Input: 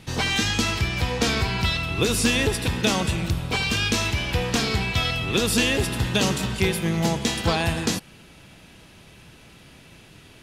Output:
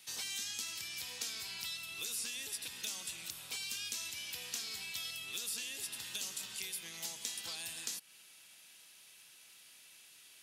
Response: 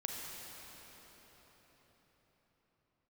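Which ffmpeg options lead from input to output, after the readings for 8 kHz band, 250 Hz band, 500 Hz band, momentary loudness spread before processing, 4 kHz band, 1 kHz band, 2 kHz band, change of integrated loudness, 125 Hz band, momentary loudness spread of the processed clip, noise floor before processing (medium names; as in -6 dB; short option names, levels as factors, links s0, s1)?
-9.5 dB, -35.5 dB, -32.5 dB, 4 LU, -14.5 dB, -27.5 dB, -20.0 dB, -16.5 dB, -39.5 dB, 18 LU, -49 dBFS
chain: -filter_complex "[0:a]aderivative,acrossover=split=360|2600|6500[s0][s1][s2][s3];[s0]acompressor=threshold=0.00112:ratio=4[s4];[s1]acompressor=threshold=0.00224:ratio=4[s5];[s2]acompressor=threshold=0.00631:ratio=4[s6];[s3]acompressor=threshold=0.00708:ratio=4[s7];[s4][s5][s6][s7]amix=inputs=4:normalize=0,volume=0.891"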